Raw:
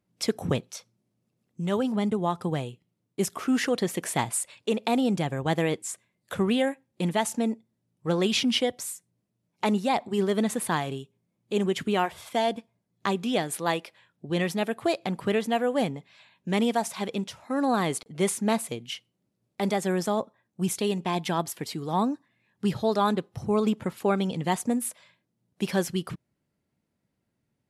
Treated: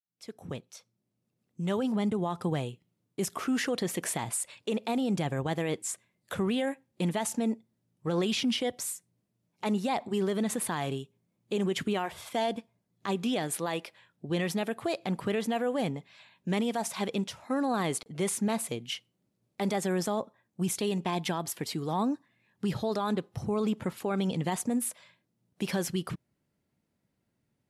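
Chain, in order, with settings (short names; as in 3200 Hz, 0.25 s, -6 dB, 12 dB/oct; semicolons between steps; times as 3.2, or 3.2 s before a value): opening faded in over 2.11 s; limiter -21.5 dBFS, peak gain reduction 10.5 dB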